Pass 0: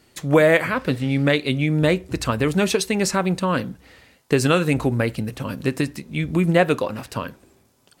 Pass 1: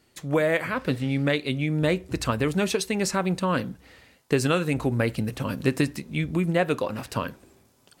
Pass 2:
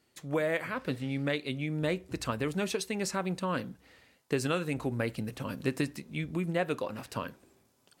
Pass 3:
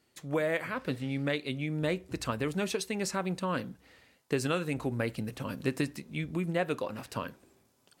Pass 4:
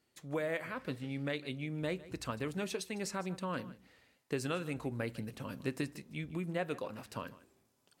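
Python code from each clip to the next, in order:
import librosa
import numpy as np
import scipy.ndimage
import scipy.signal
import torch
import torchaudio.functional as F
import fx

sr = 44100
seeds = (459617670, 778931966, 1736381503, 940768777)

y1 = fx.rider(x, sr, range_db=4, speed_s=0.5)
y1 = y1 * 10.0 ** (-4.5 / 20.0)
y2 = fx.low_shelf(y1, sr, hz=72.0, db=-8.0)
y2 = y2 * 10.0 ** (-7.0 / 20.0)
y3 = y2
y4 = y3 + 10.0 ** (-18.0 / 20.0) * np.pad(y3, (int(153 * sr / 1000.0), 0))[:len(y3)]
y4 = y4 * 10.0 ** (-6.0 / 20.0)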